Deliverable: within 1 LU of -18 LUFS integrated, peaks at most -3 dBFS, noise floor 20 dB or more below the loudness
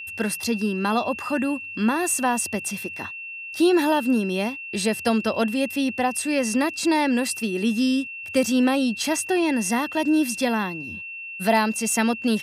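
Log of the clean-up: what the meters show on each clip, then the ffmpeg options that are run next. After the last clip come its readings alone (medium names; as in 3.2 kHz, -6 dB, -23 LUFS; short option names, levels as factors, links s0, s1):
steady tone 2.7 kHz; tone level -33 dBFS; loudness -23.0 LUFS; peak level -6.0 dBFS; loudness target -18.0 LUFS
-> -af "bandreject=f=2700:w=30"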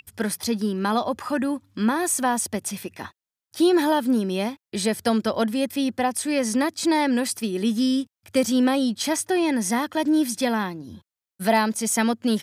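steady tone not found; loudness -23.5 LUFS; peak level -6.5 dBFS; loudness target -18.0 LUFS
-> -af "volume=1.88,alimiter=limit=0.708:level=0:latency=1"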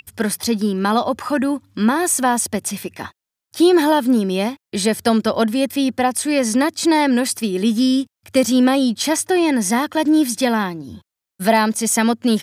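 loudness -18.0 LUFS; peak level -3.0 dBFS; noise floor -86 dBFS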